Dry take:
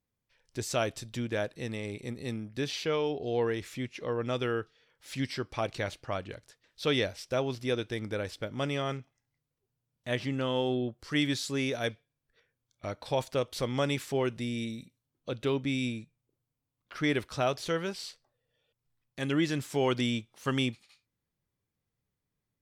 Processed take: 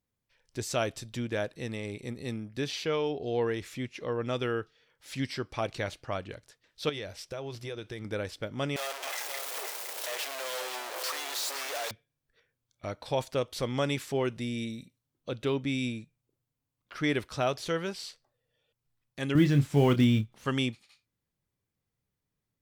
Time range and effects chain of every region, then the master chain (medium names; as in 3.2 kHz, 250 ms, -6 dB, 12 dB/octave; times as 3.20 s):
6.89–8.05 s: band-stop 250 Hz, Q 5.5 + compression, threshold -34 dBFS
8.76–11.91 s: one-bit comparator + inverse Chebyshev high-pass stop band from 150 Hz, stop band 60 dB + delay 515 ms -7.5 dB
19.35–20.46 s: block-companded coder 5-bit + tone controls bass +13 dB, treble -6 dB + doubling 28 ms -9.5 dB
whole clip: none